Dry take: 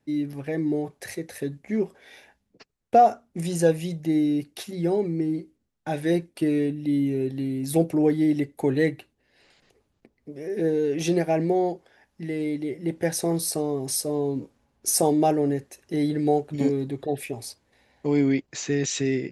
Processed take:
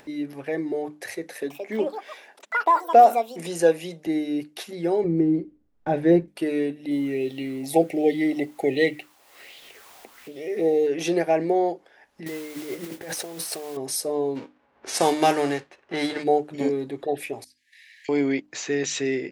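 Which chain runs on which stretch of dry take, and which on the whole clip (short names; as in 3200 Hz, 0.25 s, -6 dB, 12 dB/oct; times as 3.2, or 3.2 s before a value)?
1.24–4.07 HPF 170 Hz 24 dB/oct + echoes that change speed 0.227 s, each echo +6 st, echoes 3, each echo -6 dB
5.04–6.28 block floating point 7-bit + tilt -4 dB/oct
6.91–10.87 brick-wall FIR band-stop 850–1800 Hz + requantised 10-bit, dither triangular + LFO bell 1.3 Hz 740–3400 Hz +11 dB
12.26–13.77 negative-ratio compressor -33 dBFS + modulation noise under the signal 12 dB
14.35–16.22 spectral whitening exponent 0.6 + HPF 59 Hz + low-pass opened by the level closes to 1600 Hz, open at -16 dBFS
17.44–18.09 brick-wall FIR high-pass 1600 Hz + compressor 16:1, threshold -51 dBFS
whole clip: tone controls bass -14 dB, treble -5 dB; notches 50/100/150/200/250/300 Hz; upward compressor, threshold -41 dBFS; gain +3.5 dB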